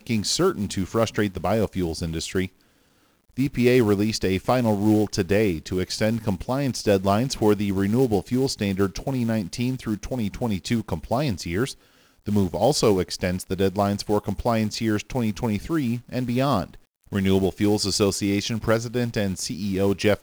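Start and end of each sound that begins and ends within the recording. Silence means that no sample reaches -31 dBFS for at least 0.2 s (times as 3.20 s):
3.37–11.72 s
12.26–16.74 s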